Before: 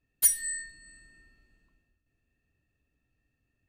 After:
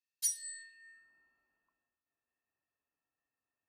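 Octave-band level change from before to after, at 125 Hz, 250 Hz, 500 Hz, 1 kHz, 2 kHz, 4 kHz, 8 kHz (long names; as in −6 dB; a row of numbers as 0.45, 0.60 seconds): below −30 dB, below −20 dB, below −20 dB, can't be measured, −12.0 dB, −3.0 dB, −9.5 dB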